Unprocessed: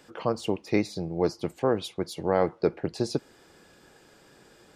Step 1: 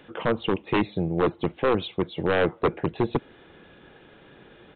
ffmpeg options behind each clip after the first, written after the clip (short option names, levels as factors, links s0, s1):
-af "equalizer=f=960:t=o:w=2.3:g=-3,aresample=8000,aeval=exprs='0.0944*(abs(mod(val(0)/0.0944+3,4)-2)-1)':c=same,aresample=44100,volume=2.24"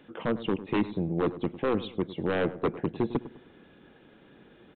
-filter_complex "[0:a]equalizer=f=240:t=o:w=1:g=7,asplit=2[s0][s1];[s1]adelay=102,lowpass=f=1200:p=1,volume=0.2,asplit=2[s2][s3];[s3]adelay=102,lowpass=f=1200:p=1,volume=0.42,asplit=2[s4][s5];[s5]adelay=102,lowpass=f=1200:p=1,volume=0.42,asplit=2[s6][s7];[s7]adelay=102,lowpass=f=1200:p=1,volume=0.42[s8];[s0][s2][s4][s6][s8]amix=inputs=5:normalize=0,volume=0.447"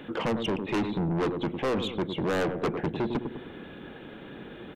-filter_complex "[0:a]asplit=2[s0][s1];[s1]acompressor=threshold=0.0178:ratio=6,volume=1[s2];[s0][s2]amix=inputs=2:normalize=0,asoftclip=type=tanh:threshold=0.0316,volume=2"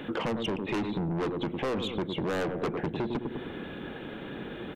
-af "acompressor=threshold=0.0224:ratio=6,volume=1.58"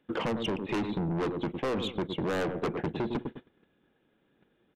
-af "agate=range=0.0282:threshold=0.0224:ratio=16:detection=peak"